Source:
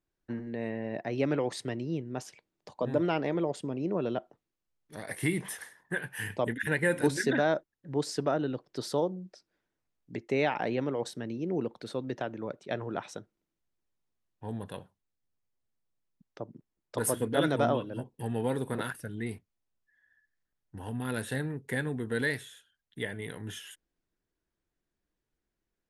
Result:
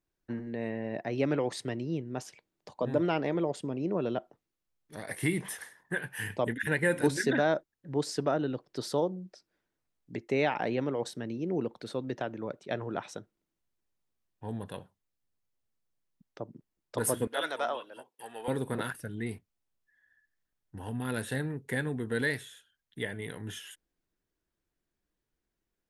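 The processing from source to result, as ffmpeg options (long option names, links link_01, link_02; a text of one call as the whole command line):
ffmpeg -i in.wav -filter_complex "[0:a]asettb=1/sr,asplit=3[link_01][link_02][link_03];[link_01]atrim=end=17.274[link_04];[link_02]atrim=start=17.27:end=18.48,asetpts=PTS-STARTPTS,afade=type=in:duration=0.004:curve=qsin,afade=type=out:start_time=1.206:duration=0.004:curve=qsin,highpass=770[link_05];[link_03]atrim=start=18.476[link_06];[link_04][link_05]acrossfade=duration=0.004:curve1=hsin:curve2=qsin[link_07];[link_07][link_06]acrossfade=duration=0.004:curve1=qsin:curve2=hsin" out.wav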